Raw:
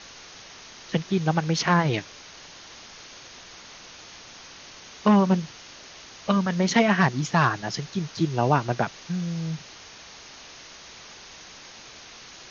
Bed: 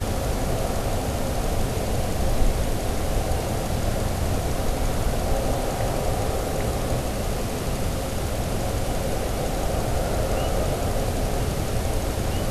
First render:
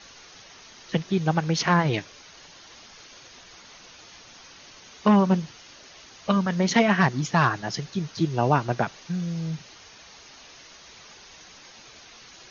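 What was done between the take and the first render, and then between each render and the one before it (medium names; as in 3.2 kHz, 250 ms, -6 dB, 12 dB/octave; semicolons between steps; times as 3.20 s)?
noise reduction 6 dB, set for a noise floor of -46 dBFS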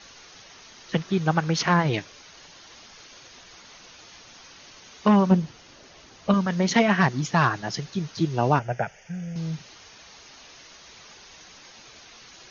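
0.93–1.63 s: peaking EQ 1.3 kHz +5 dB; 5.31–6.34 s: tilt shelf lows +4 dB, about 930 Hz; 8.59–9.36 s: static phaser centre 1.1 kHz, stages 6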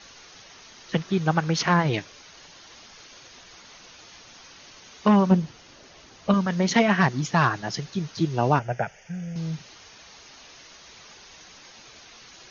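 no audible change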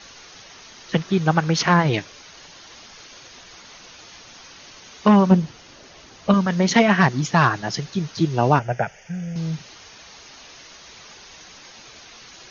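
trim +4 dB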